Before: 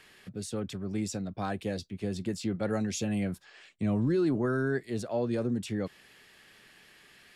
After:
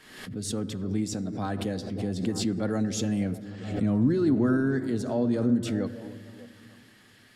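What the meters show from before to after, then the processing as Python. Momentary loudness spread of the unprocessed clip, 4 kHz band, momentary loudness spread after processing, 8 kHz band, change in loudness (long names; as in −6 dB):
9 LU, +4.5 dB, 13 LU, +3.5 dB, +4.0 dB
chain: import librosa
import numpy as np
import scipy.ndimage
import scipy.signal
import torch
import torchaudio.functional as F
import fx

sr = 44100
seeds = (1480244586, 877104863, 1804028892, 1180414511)

y = fx.graphic_eq_31(x, sr, hz=(100, 250, 2500), db=(4, 11, -6))
y = fx.echo_stepped(y, sr, ms=298, hz=350.0, octaves=0.7, feedback_pct=70, wet_db=-11.5)
y = fx.room_shoebox(y, sr, seeds[0], volume_m3=3900.0, walls='mixed', distance_m=0.55)
y = fx.pre_swell(y, sr, db_per_s=66.0)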